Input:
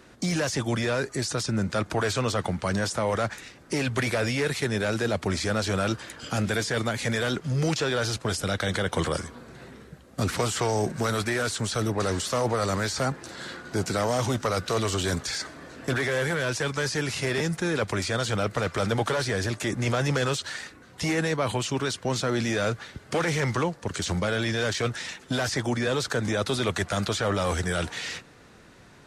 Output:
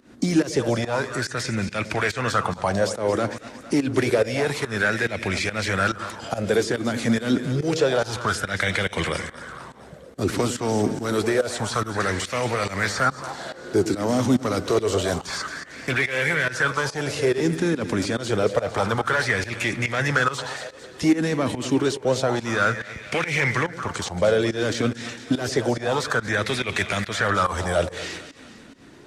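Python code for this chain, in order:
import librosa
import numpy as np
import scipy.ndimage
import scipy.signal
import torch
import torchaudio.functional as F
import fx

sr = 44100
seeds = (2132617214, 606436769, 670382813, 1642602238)

y = fx.echo_split(x, sr, split_hz=540.0, low_ms=103, high_ms=226, feedback_pct=52, wet_db=-11.5)
y = fx.volume_shaper(y, sr, bpm=142, per_beat=1, depth_db=-17, release_ms=165.0, shape='fast start')
y = fx.bell_lfo(y, sr, hz=0.28, low_hz=250.0, high_hz=2400.0, db=13)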